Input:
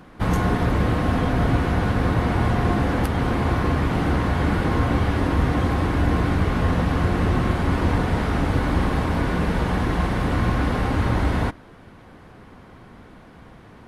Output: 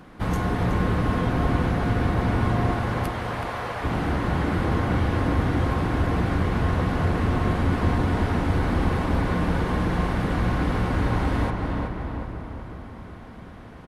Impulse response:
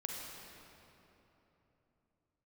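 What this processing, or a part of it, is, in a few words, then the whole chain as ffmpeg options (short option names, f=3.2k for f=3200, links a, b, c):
ducked reverb: -filter_complex "[0:a]asplit=3[a][b][c];[1:a]atrim=start_sample=2205[d];[b][d]afir=irnorm=-1:irlink=0[e];[c]apad=whole_len=611732[f];[e][f]sidechaincompress=threshold=-40dB:ratio=8:attack=16:release=104,volume=-2dB[g];[a][g]amix=inputs=2:normalize=0,asettb=1/sr,asplit=3[h][i][j];[h]atrim=end=2.724[k];[i]atrim=start=2.72:end=3.84,asetpts=PTS-STARTPTS,afade=t=in:d=0.004:c=qsin,afade=t=out:st=1.116:d=0.004:c=qsin,highpass=f=490:w=0.5412,highpass=f=490:w=1.3066[l];[j]atrim=start=3.836[m];[k][l]acrossfade=d=0.004:c1=hsin:c2=qsin[n];[n][m]acrossfade=d=0.004:c1=qsin:c2=hsin,asplit=2[o][p];[p]adelay=373,lowpass=f=2.8k:p=1,volume=-3.5dB,asplit=2[q][r];[r]adelay=373,lowpass=f=2.8k:p=1,volume=0.53,asplit=2[s][t];[t]adelay=373,lowpass=f=2.8k:p=1,volume=0.53,asplit=2[u][v];[v]adelay=373,lowpass=f=2.8k:p=1,volume=0.53,asplit=2[w][x];[x]adelay=373,lowpass=f=2.8k:p=1,volume=0.53,asplit=2[y][z];[z]adelay=373,lowpass=f=2.8k:p=1,volume=0.53,asplit=2[aa][ab];[ab]adelay=373,lowpass=f=2.8k:p=1,volume=0.53[ac];[o][q][s][u][w][y][aa][ac]amix=inputs=8:normalize=0,volume=-4.5dB"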